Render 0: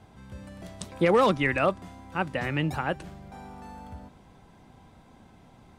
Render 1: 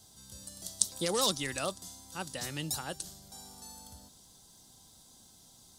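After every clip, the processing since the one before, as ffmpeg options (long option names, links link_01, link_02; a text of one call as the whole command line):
ffmpeg -i in.wav -af "aexciter=amount=14.5:drive=7.6:freq=3700,volume=-11.5dB" out.wav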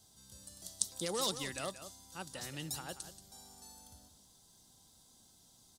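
ffmpeg -i in.wav -af "aecho=1:1:181:0.251,volume=-6dB" out.wav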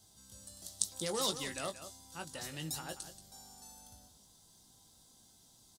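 ffmpeg -i in.wav -filter_complex "[0:a]asplit=2[link_01][link_02];[link_02]adelay=19,volume=-7.5dB[link_03];[link_01][link_03]amix=inputs=2:normalize=0" out.wav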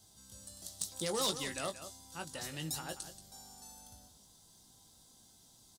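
ffmpeg -i in.wav -af "volume=25.5dB,asoftclip=hard,volume=-25.5dB,volume=1dB" out.wav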